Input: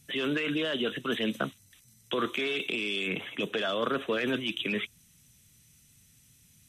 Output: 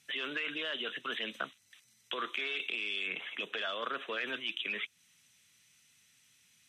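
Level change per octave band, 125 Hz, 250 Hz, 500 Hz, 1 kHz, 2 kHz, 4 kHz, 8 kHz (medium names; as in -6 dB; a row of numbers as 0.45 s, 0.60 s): under -20 dB, -16.0 dB, -11.5 dB, -4.5 dB, -2.5 dB, -3.5 dB, no reading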